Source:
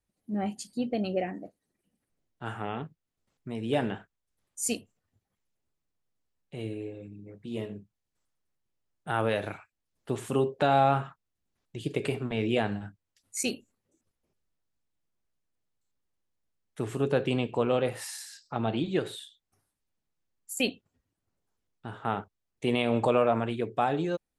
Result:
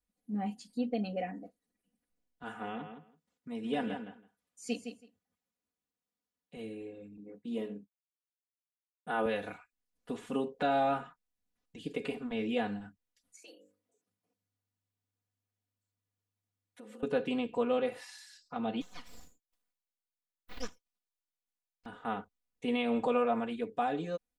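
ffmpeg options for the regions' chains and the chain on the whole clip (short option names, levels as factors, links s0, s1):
-filter_complex "[0:a]asettb=1/sr,asplit=3[s0][s1][s2];[s0]atrim=end=2.434[s3];[s1]atrim=start=2.43:end=6.57,asetpts=PTS-STARTPTS,afade=t=in:d=0.004:c=qsin,afade=t=out:st=4.136:d=0.004:c=qsin,highpass=91,asplit=2[s4][s5];[s5]adelay=163,lowpass=f=4200:p=1,volume=0.398,asplit=2[s6][s7];[s7]adelay=163,lowpass=f=4200:p=1,volume=0.15[s8];[s4][s6][s8]amix=inputs=3:normalize=0,atrim=end_sample=182574[s9];[s2]atrim=start=6.566[s10];[s3][s9]acrossfade=d=0.004:c1=hsin:c2=qsin[s11];[s11][s10]acrossfade=d=0.004:c1=qsin:c2=hsin,asettb=1/sr,asplit=3[s12][s13][s14];[s12]atrim=end=7.174[s15];[s13]atrim=start=7.17:end=9.26,asetpts=PTS-STARTPTS,afade=t=in:d=0.004:c=qsin,afade=t=out:st=2.086:d=0.004:c=qsin,agate=range=0.0224:threshold=0.00251:ratio=3:release=100:detection=peak,highpass=280,lowshelf=f=430:g=10.5[s16];[s14]atrim=start=9.256[s17];[s15][s16]acrossfade=d=0.004:c1=hsin:c2=qsin[s18];[s18][s17]acrossfade=d=0.004:c1=qsin:c2=hsin,asettb=1/sr,asplit=3[s19][s20][s21];[s19]atrim=end=13.364[s22];[s20]atrim=start=13.36:end=17.03,asetpts=PTS-STARTPTS,afade=t=in:d=0.004:c=qsin,afade=t=out:st=3.666:d=0.004:c=qsin,bandreject=f=50:t=h:w=6,bandreject=f=100:t=h:w=6,bandreject=f=150:t=h:w=6,bandreject=f=200:t=h:w=6,bandreject=f=250:t=h:w=6,bandreject=f=300:t=h:w=6,bandreject=f=350:t=h:w=6,bandreject=f=400:t=h:w=6,bandreject=f=450:t=h:w=6,acompressor=threshold=0.00631:ratio=5:attack=3.2:release=140:knee=1:detection=peak,afreqshift=100[s23];[s21]atrim=start=17.026[s24];[s22][s23]acrossfade=d=0.004:c1=hsin:c2=qsin[s25];[s25][s24]acrossfade=d=0.004:c1=qsin:c2=hsin,asettb=1/sr,asplit=3[s26][s27][s28];[s26]atrim=end=18.814[s29];[s27]atrim=start=18.81:end=21.86,asetpts=PTS-STARTPTS,afade=t=in:d=0.004:c=qsin,afade=t=out:st=3.046:d=0.004:c=qsin,highpass=1200,aeval=exprs='abs(val(0))':c=same[s30];[s28]atrim=start=21.856[s31];[s29][s30]acrossfade=d=0.004:c1=hsin:c2=qsin[s32];[s32][s31]acrossfade=d=0.004:c1=qsin:c2=hsin,acrossover=split=5400[s33][s34];[s34]acompressor=threshold=0.00141:ratio=4:attack=1:release=60[s35];[s33][s35]amix=inputs=2:normalize=0,aecho=1:1:4.1:0.92,volume=0.398"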